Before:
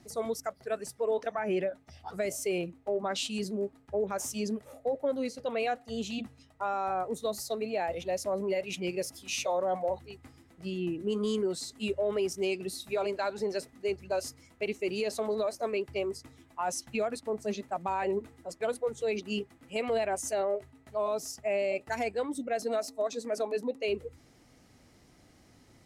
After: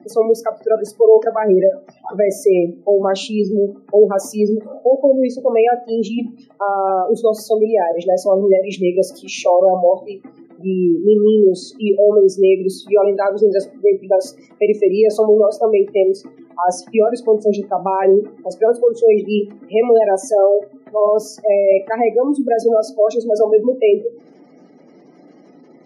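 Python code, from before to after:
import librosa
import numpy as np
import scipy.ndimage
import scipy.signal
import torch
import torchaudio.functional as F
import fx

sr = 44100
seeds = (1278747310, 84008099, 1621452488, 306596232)

y = fx.spec_gate(x, sr, threshold_db=-20, keep='strong')
y = scipy.signal.sosfilt(scipy.signal.cheby1(4, 1.0, 170.0, 'highpass', fs=sr, output='sos'), y)
y = fx.peak_eq(y, sr, hz=390.0, db=12.0, octaves=2.4)
y = fx.notch(y, sr, hz=7800.0, q=5.8)
y = fx.room_shoebox(y, sr, seeds[0], volume_m3=120.0, walls='furnished', distance_m=0.35)
y = F.gain(torch.from_numpy(y), 7.5).numpy()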